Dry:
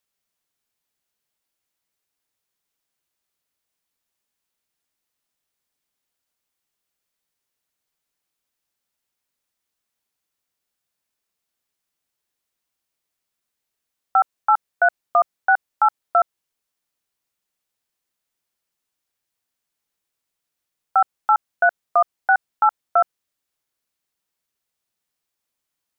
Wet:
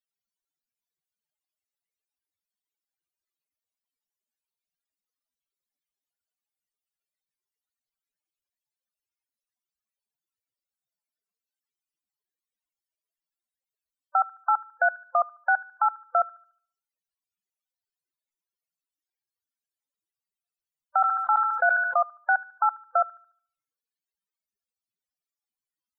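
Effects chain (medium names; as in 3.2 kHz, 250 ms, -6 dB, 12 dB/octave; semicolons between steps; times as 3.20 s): dynamic bell 860 Hz, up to -5 dB, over -29 dBFS, Q 0.99; feedback echo behind a high-pass 73 ms, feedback 40%, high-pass 1.9 kHz, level -12 dB; loudest bins only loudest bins 32; 21.01–22.01 s: decay stretcher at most 39 dB/s; trim -2.5 dB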